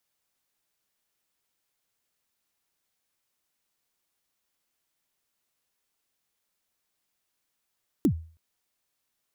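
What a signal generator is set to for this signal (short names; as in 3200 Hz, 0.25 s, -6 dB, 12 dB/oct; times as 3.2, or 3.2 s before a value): kick drum length 0.32 s, from 350 Hz, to 81 Hz, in 82 ms, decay 0.41 s, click on, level -15 dB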